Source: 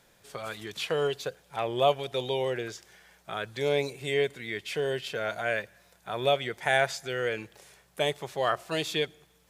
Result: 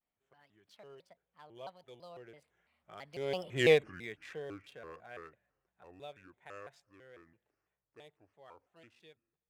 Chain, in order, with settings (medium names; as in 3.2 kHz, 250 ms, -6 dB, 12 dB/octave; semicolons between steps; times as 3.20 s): local Wiener filter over 9 samples; Doppler pass-by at 3.67 s, 41 m/s, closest 4 m; vibrato with a chosen wave square 3 Hz, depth 250 cents; trim +3.5 dB